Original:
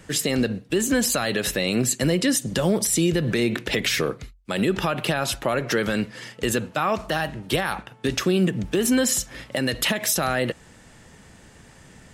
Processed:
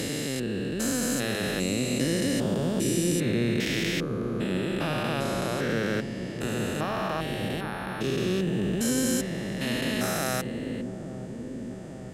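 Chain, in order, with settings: stepped spectrum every 0.4 s; dark delay 0.844 s, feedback 69%, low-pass 420 Hz, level -5.5 dB; gain -1 dB

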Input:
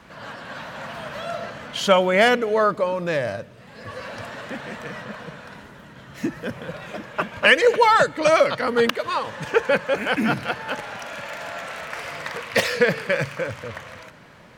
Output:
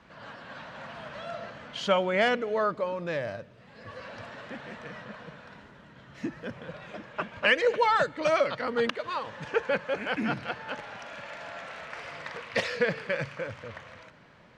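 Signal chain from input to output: LPF 5500 Hz 12 dB/oct; gain -8 dB

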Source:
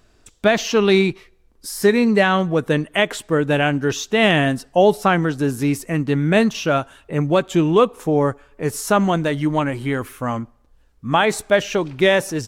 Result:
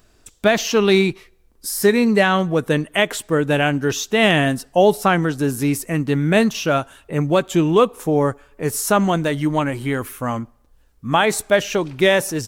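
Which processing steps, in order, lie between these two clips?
high shelf 9400 Hz +10.5 dB

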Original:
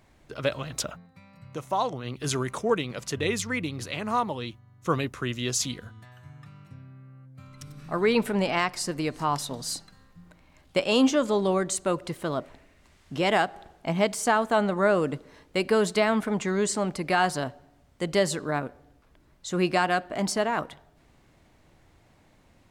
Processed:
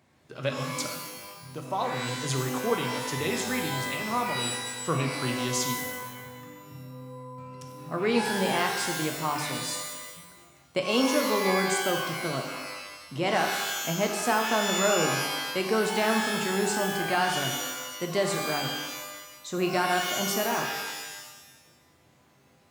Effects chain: HPF 87 Hz 24 dB/oct; shimmer reverb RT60 1.1 s, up +12 st, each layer -2 dB, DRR 3.5 dB; gain -4 dB

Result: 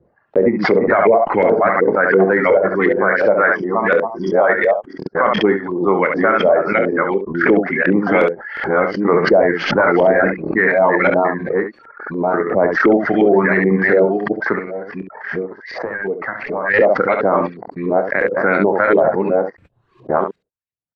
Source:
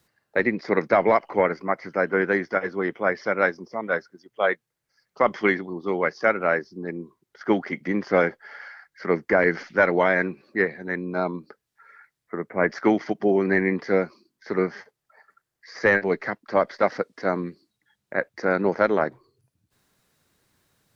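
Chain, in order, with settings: reverse delay 0.653 s, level -5 dB; reverb removal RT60 0.81 s; gate -48 dBFS, range -37 dB; 14.53–16.74 compressor 12:1, threshold -33 dBFS, peak gain reduction 19.5 dB; LFO low-pass saw up 2.8 Hz 410–3100 Hz; early reflections 26 ms -11 dB, 68 ms -8.5 dB; maximiser +11.5 dB; backwards sustainer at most 71 dB/s; gain -3 dB

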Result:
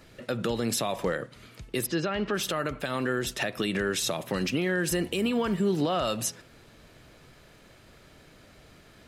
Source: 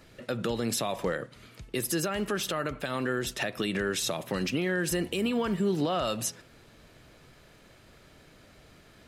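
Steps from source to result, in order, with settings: 1.86–2.34 LPF 4700 Hz 24 dB/oct; gain +1.5 dB

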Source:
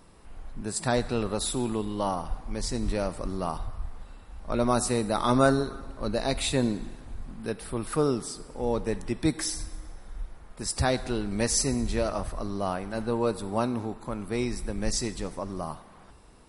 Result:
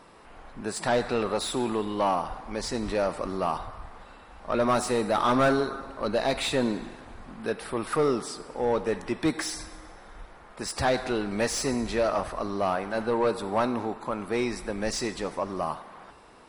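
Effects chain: overdrive pedal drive 21 dB, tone 2000 Hz, clips at -7.5 dBFS; gain -5 dB

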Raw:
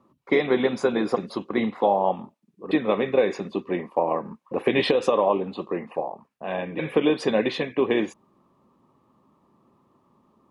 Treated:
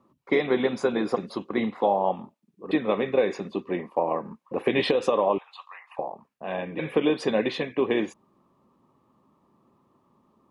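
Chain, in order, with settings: 5.38–5.99 steep high-pass 900 Hz 36 dB/oct; gain -2 dB

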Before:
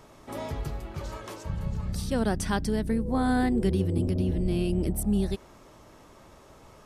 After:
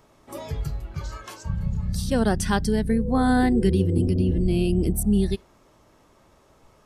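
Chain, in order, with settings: spectral noise reduction 10 dB; gain +5 dB

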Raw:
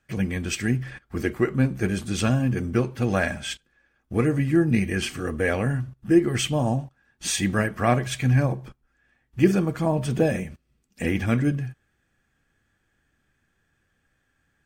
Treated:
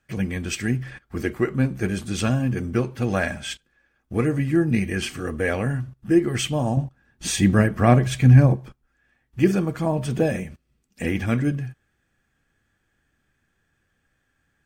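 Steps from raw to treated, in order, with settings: 6.77–8.56 low shelf 480 Hz +8.5 dB

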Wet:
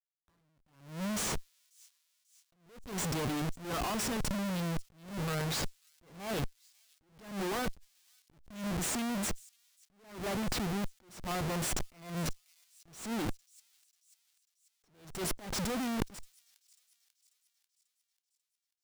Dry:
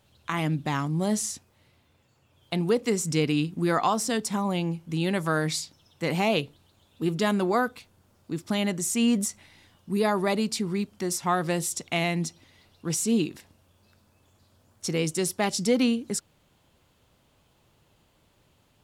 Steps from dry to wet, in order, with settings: HPF 62 Hz 12 dB/oct; Schmitt trigger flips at -33 dBFS; negative-ratio compressor -33 dBFS, ratio -0.5; thin delay 0.541 s, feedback 54%, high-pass 4500 Hz, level -20.5 dB; attack slew limiter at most 110 dB/s; gain +2 dB

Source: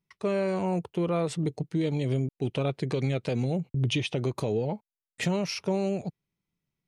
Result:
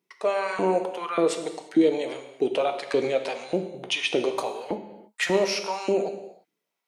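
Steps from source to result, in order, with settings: in parallel at -1 dB: limiter -25.5 dBFS, peak gain reduction 8.5 dB; on the sum: LFO high-pass saw up 1.7 Hz 310–1600 Hz; non-linear reverb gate 0.37 s falling, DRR 6 dB

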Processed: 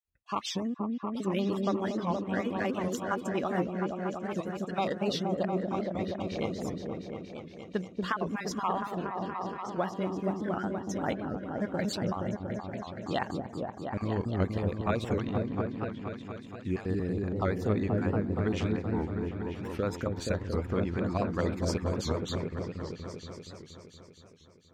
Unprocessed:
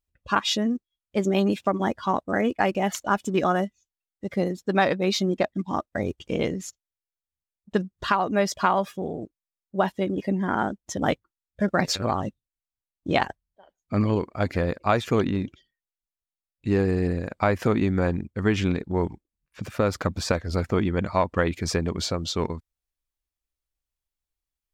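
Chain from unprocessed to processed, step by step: random spectral dropouts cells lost 25%; repeats that get brighter 0.236 s, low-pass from 400 Hz, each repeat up 1 oct, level 0 dB; record warp 78 rpm, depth 160 cents; gain -8.5 dB

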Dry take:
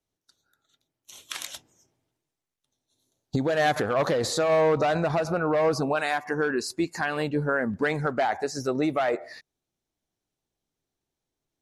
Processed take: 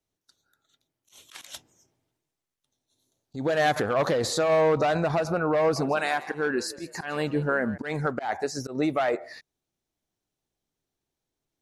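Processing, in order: auto swell 0.132 s; 5.6–7.78 frequency-shifting echo 0.16 s, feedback 38%, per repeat +57 Hz, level -17 dB

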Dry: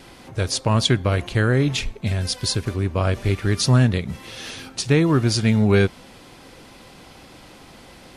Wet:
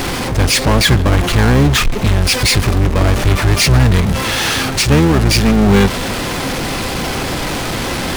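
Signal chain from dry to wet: power-law curve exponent 0.35; harmoniser -12 st -2 dB; gain -1 dB

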